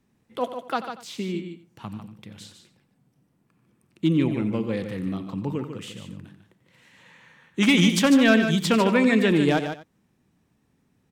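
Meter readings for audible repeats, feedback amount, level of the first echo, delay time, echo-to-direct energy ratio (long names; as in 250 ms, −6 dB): 3, repeats not evenly spaced, −13.5 dB, 90 ms, −7.0 dB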